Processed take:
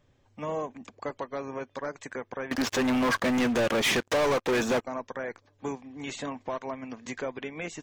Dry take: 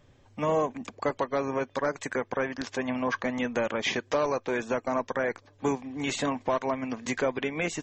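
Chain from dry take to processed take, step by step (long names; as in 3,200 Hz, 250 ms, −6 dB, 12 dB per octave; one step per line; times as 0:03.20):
0:02.51–0:04.81: leveller curve on the samples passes 5
level −6.5 dB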